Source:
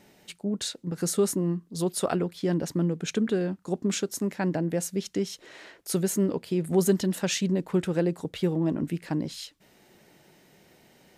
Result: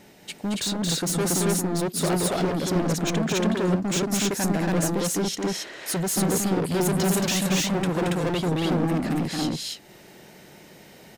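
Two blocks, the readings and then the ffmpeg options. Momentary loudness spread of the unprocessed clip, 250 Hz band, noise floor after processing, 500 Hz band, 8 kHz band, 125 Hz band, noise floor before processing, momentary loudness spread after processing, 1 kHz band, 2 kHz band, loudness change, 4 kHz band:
7 LU, +3.0 dB, -49 dBFS, +1.5 dB, +7.0 dB, +4.0 dB, -60 dBFS, 6 LU, +9.0 dB, +8.0 dB, +3.5 dB, +8.0 dB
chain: -af "volume=30dB,asoftclip=hard,volume=-30dB,aecho=1:1:224.5|279.9:0.631|1,volume=6dB"

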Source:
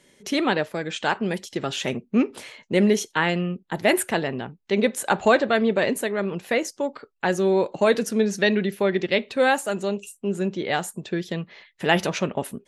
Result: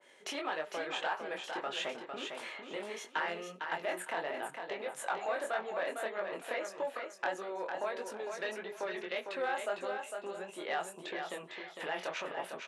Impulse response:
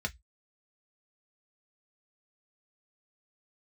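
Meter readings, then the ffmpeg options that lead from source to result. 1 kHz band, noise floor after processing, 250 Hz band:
-10.5 dB, -54 dBFS, -24.0 dB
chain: -filter_complex "[0:a]equalizer=f=5.4k:t=o:w=1.4:g=-11,alimiter=limit=-15dB:level=0:latency=1:release=16,acompressor=threshold=-31dB:ratio=6,flanger=delay=19:depth=5.9:speed=1.6,asoftclip=type=tanh:threshold=-27.5dB,highpass=730,lowpass=7.2k,aecho=1:1:454|908|1362:0.501|0.12|0.0289,asplit=2[a][b];[1:a]atrim=start_sample=2205,lowpass=2.4k[c];[b][c]afir=irnorm=-1:irlink=0,volume=-15.5dB[d];[a][d]amix=inputs=2:normalize=0,adynamicequalizer=threshold=0.002:dfrequency=2200:dqfactor=0.7:tfrequency=2200:tqfactor=0.7:attack=5:release=100:ratio=0.375:range=1.5:mode=cutabove:tftype=highshelf,volume=6.5dB"

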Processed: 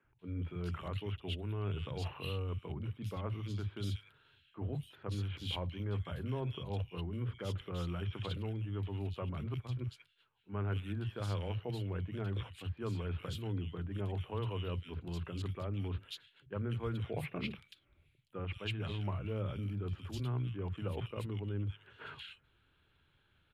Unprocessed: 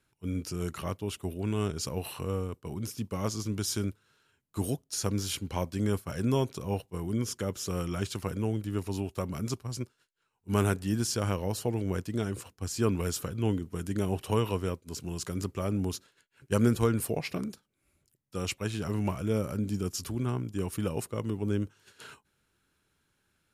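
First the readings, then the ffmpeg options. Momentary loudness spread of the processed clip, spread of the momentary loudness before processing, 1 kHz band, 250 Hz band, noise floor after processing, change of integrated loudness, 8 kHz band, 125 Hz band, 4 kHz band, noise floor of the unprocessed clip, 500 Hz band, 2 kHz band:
5 LU, 8 LU, -8.5 dB, -11.5 dB, -72 dBFS, -7.5 dB, under -20 dB, -4.5 dB, -6.0 dB, -76 dBFS, -10.0 dB, -6.5 dB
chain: -filter_complex "[0:a]firequalizer=gain_entry='entry(140,0);entry(200,-7);entry(3300,1);entry(5500,-26);entry(11000,-24)':delay=0.05:min_phase=1,areverse,acompressor=threshold=-42dB:ratio=4,areverse,acrossover=split=170|2100[a][b][c];[a]adelay=40[d];[c]adelay=190[e];[d][b][e]amix=inputs=3:normalize=0,volume=7dB"

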